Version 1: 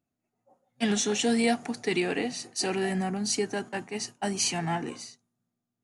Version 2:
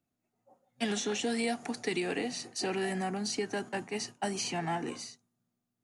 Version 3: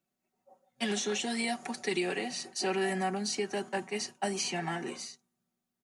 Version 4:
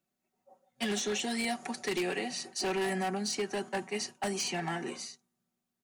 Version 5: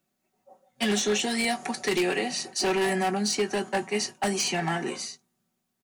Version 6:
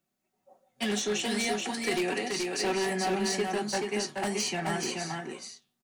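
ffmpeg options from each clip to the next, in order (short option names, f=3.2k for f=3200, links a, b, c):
-filter_complex "[0:a]acrossover=split=250|860|4900[a][b][c][d];[a]acompressor=threshold=-42dB:ratio=4[e];[b]acompressor=threshold=-33dB:ratio=4[f];[c]acompressor=threshold=-37dB:ratio=4[g];[d]acompressor=threshold=-43dB:ratio=4[h];[e][f][g][h]amix=inputs=4:normalize=0"
-af "lowshelf=f=180:g=-9.5,aecho=1:1:5.3:0.65"
-af "aeval=exprs='0.0531*(abs(mod(val(0)/0.0531+3,4)-2)-1)':c=same"
-filter_complex "[0:a]asplit=2[a][b];[b]adelay=19,volume=-12dB[c];[a][c]amix=inputs=2:normalize=0,volume=6.5dB"
-filter_complex "[0:a]flanger=delay=5.7:depth=5.1:regen=-86:speed=2:shape=sinusoidal,asplit=2[a][b];[b]aecho=0:1:429:0.668[c];[a][c]amix=inputs=2:normalize=0"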